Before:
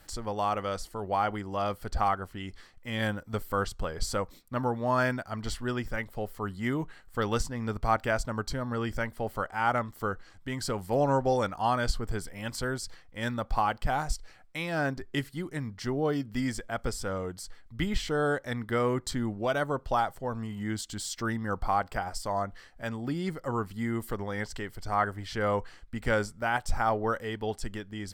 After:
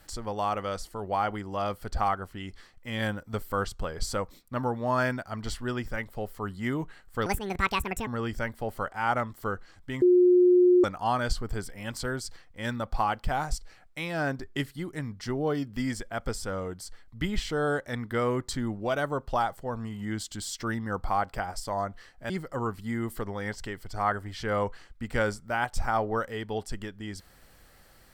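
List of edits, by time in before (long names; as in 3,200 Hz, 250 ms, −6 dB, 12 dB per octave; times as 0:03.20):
0:07.26–0:08.65: play speed 172%
0:10.60–0:11.42: beep over 359 Hz −15.5 dBFS
0:22.88–0:23.22: remove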